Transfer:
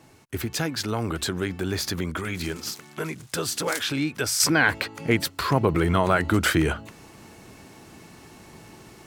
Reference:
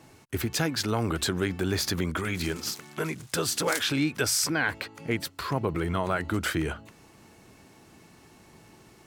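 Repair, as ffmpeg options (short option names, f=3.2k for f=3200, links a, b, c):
-af "asetnsamples=n=441:p=0,asendcmd='4.4 volume volume -7dB',volume=0dB"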